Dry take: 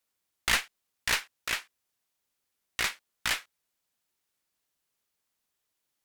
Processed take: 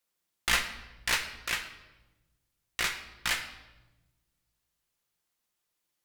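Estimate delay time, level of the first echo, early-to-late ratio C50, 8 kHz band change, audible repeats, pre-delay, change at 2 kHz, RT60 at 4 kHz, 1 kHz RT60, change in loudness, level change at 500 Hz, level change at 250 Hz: none, none, 9.5 dB, -0.5 dB, none, 6 ms, 0.0 dB, 0.80 s, 0.95 s, -0.5 dB, 0.0 dB, +0.5 dB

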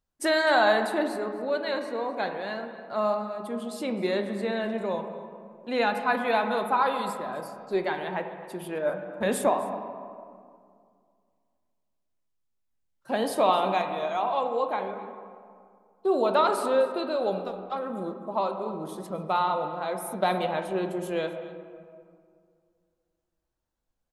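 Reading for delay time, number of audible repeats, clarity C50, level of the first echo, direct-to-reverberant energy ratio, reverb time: 0.258 s, 1, 7.0 dB, -18.5 dB, 5.5 dB, 2.2 s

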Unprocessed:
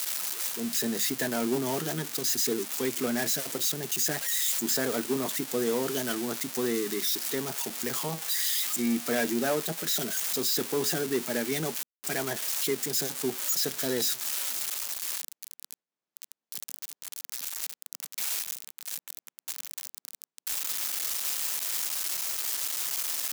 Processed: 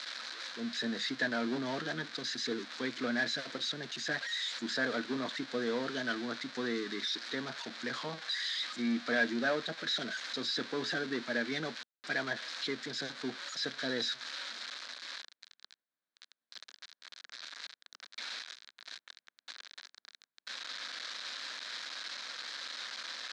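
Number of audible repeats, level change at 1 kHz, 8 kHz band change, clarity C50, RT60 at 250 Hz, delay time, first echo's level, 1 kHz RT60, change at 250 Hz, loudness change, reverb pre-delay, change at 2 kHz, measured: none, -4.0 dB, -19.5 dB, none, none, none, none, none, -5.0 dB, -7.5 dB, none, +1.5 dB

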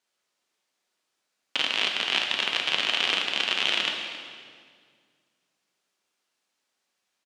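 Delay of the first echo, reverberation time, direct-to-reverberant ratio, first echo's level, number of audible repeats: 0.27 s, 1.9 s, 1.5 dB, -15.0 dB, 1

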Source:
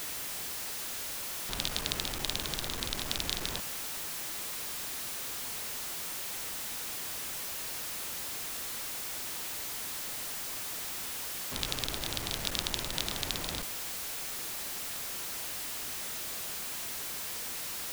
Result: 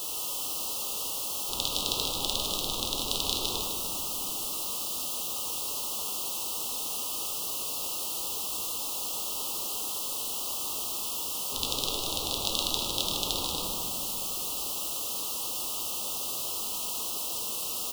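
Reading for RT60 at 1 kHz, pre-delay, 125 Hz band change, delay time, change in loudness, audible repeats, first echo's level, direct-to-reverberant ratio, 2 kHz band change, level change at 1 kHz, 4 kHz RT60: 2.1 s, 4 ms, -0.5 dB, 0.153 s, +5.0 dB, 1, -7.0 dB, -1.0 dB, -5.0 dB, +5.0 dB, 1.5 s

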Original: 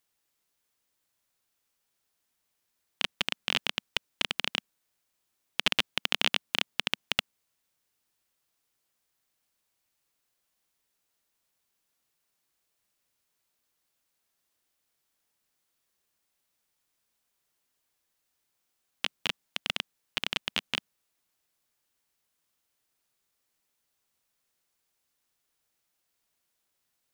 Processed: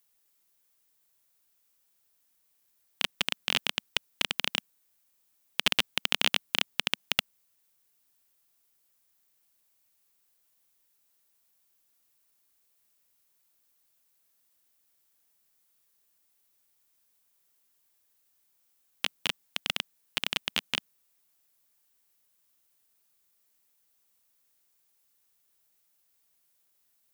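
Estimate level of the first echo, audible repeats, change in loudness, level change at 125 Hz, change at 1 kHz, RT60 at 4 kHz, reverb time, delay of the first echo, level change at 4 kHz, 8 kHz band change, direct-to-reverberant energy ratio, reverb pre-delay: none, none, +1.0 dB, 0.0 dB, 0.0 dB, none, none, none, +1.0 dB, +4.0 dB, none, none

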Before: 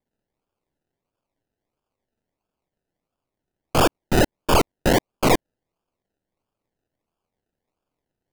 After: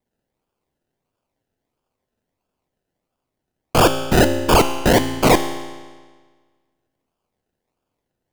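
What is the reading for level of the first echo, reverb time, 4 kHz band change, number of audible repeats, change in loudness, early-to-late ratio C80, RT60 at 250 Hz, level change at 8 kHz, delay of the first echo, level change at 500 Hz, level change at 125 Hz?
none, 1.5 s, +4.5 dB, none, +4.5 dB, 10.5 dB, 1.5 s, +4.5 dB, none, +4.5 dB, +4.5 dB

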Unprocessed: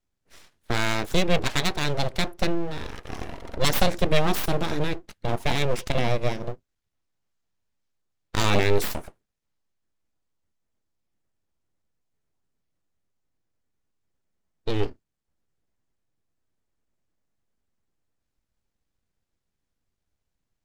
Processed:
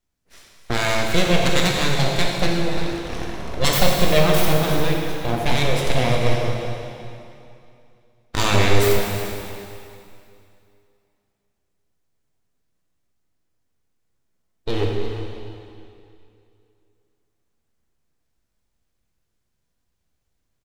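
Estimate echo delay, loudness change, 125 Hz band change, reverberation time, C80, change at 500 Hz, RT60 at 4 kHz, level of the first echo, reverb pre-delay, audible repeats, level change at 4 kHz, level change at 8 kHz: 0.351 s, +5.0 dB, +6.5 dB, 2.6 s, 1.5 dB, +6.0 dB, 2.4 s, -13.5 dB, 4 ms, 1, +6.0 dB, +7.0 dB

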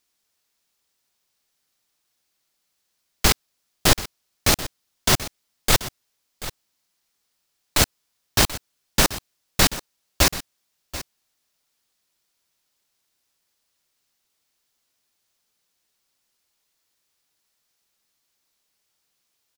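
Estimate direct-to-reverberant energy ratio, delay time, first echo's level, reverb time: none, 0.734 s, -15.0 dB, none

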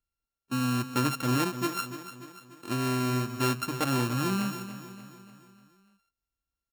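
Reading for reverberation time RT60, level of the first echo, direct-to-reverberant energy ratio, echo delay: none, -12.0 dB, none, 0.293 s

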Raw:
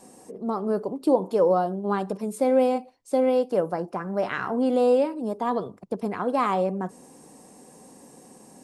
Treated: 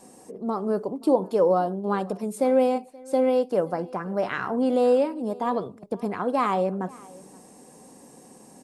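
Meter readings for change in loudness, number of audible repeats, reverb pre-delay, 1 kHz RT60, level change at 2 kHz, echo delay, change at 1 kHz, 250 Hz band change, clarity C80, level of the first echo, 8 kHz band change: 0.0 dB, 1, none, none, 0.0 dB, 0.528 s, 0.0 dB, 0.0 dB, none, -23.0 dB, n/a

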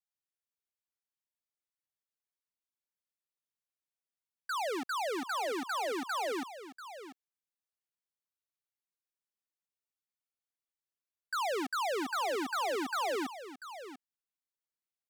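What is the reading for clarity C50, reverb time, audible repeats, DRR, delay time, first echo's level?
none, none, 1, none, 0.691 s, -12.5 dB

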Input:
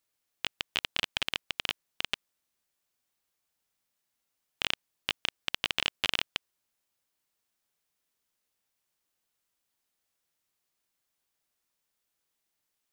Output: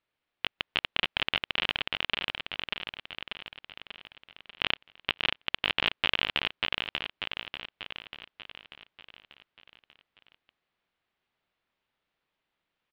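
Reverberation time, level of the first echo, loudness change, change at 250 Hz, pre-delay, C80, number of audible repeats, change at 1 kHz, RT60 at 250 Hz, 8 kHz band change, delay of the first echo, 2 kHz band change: none, -3.0 dB, +2.0 dB, +5.5 dB, none, none, 6, +6.0 dB, none, under -15 dB, 0.59 s, +5.5 dB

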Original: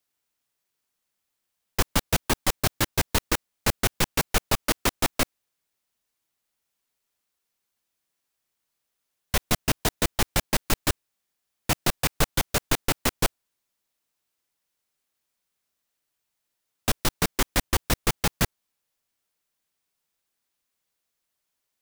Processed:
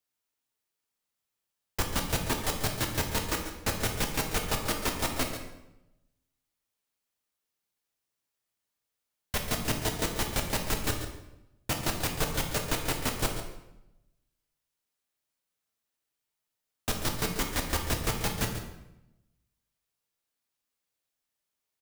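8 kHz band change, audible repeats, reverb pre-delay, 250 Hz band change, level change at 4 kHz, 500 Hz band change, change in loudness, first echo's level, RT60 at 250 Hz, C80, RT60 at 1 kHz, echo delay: -5.0 dB, 1, 5 ms, -4.0 dB, -5.0 dB, -4.0 dB, -5.0 dB, -11.5 dB, 1.1 s, 7.0 dB, 0.85 s, 0.139 s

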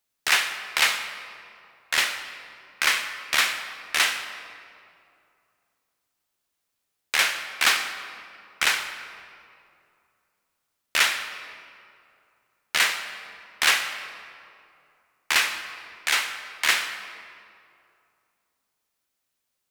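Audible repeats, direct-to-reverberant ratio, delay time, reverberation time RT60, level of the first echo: none, 7.5 dB, none, 2.5 s, none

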